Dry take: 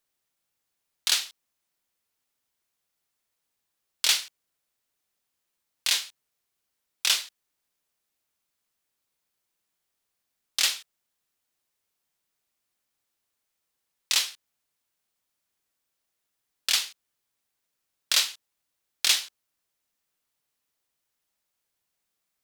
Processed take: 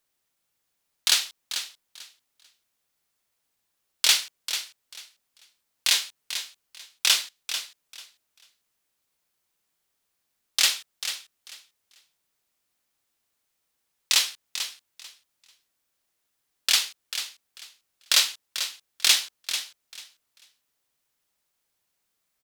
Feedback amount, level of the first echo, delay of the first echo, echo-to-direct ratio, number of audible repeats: 20%, -10.0 dB, 442 ms, -10.0 dB, 2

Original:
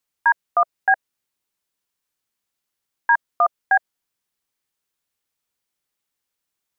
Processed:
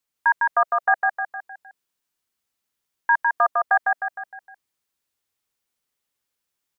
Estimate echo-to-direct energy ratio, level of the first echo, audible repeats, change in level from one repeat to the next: -2.0 dB, -3.0 dB, 5, -6.5 dB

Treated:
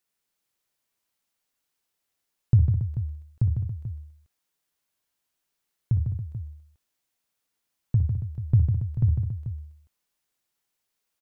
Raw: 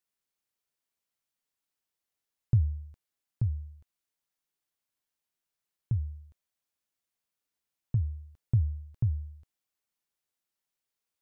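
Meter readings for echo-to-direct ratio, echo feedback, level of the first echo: -3.0 dB, no regular repeats, -10.5 dB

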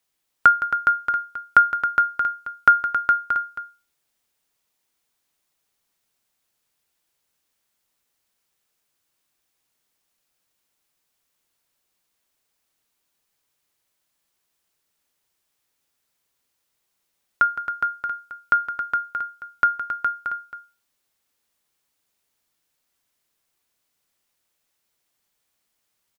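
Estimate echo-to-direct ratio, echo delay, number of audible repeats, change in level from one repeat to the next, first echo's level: -3.5 dB, 164 ms, 3, no regular repeats, -12.5 dB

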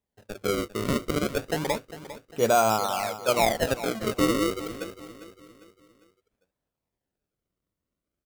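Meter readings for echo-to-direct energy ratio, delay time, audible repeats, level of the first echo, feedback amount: -13.0 dB, 401 ms, 3, -14.0 dB, 42%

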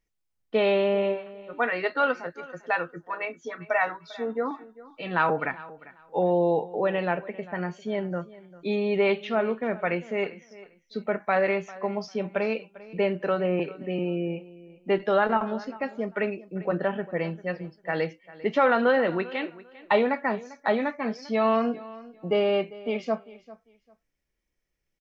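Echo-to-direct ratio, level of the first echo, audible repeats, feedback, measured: -19.0 dB, -19.0 dB, 2, 21%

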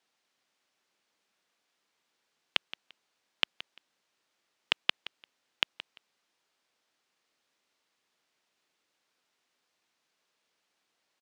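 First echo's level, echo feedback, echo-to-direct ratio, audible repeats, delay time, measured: -16.0 dB, 20%, -16.0 dB, 2, 172 ms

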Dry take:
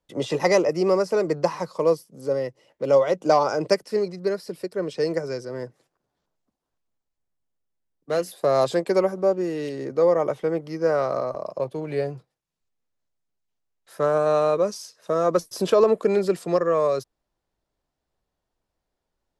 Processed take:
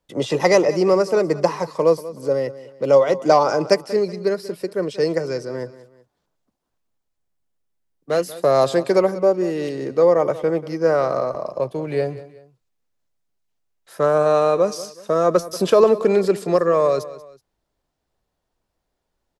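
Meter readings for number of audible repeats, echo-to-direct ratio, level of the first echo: 2, -16.0 dB, -16.5 dB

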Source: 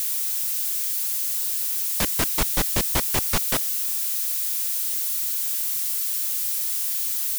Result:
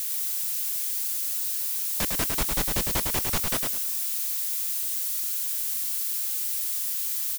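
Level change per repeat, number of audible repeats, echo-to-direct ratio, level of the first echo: -12.5 dB, 3, -4.0 dB, -4.5 dB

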